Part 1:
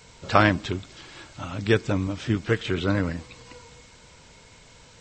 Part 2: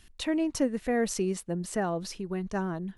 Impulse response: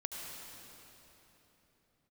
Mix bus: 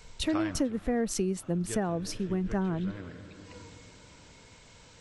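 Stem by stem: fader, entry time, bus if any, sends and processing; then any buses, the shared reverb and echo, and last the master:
−4.5 dB, 0.00 s, send −17.5 dB, automatic ducking −22 dB, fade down 1.45 s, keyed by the second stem
+3.0 dB, 0.00 s, no send, low-shelf EQ 350 Hz +8 dB; multiband upward and downward expander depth 70%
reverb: on, pre-delay 67 ms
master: downward compressor 6 to 1, threshold −26 dBFS, peak gain reduction 13.5 dB

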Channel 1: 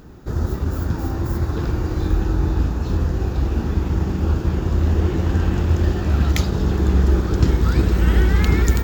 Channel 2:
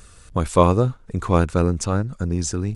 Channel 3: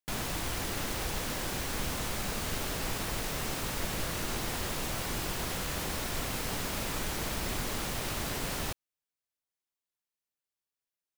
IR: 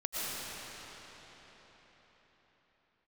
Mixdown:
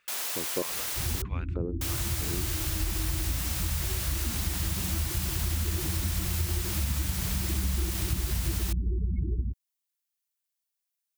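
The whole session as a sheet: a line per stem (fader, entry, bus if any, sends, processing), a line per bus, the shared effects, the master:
−8.5 dB, 0.70 s, no send, spectral peaks only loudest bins 8
−7.0 dB, 0.00 s, no send, auto-filter band-pass square 1.6 Hz 360–2,400 Hz; high-shelf EQ 5,900 Hz −11.5 dB
−3.0 dB, 0.00 s, muted 0:01.22–0:01.81, no send, high-pass filter 410 Hz 12 dB per octave; spectral tilt +3 dB per octave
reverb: not used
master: downward compressor 3 to 1, threshold −26 dBFS, peak gain reduction 7 dB

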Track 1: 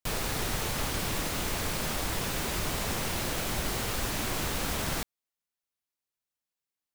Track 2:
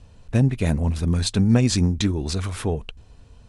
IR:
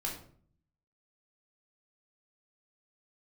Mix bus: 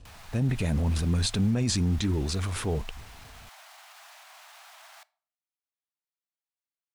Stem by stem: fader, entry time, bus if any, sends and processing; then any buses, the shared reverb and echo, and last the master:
−8.0 dB, 0.00 s, send −19.5 dB, Butterworth high-pass 630 Hz 96 dB per octave; high-shelf EQ 6,700 Hz −8.5 dB; brickwall limiter −34.5 dBFS, peak gain reduction 10.5 dB
−4.0 dB, 0.00 s, no send, transient designer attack −3 dB, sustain +7 dB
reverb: on, RT60 0.50 s, pre-delay 11 ms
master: brickwall limiter −17.5 dBFS, peak gain reduction 8 dB

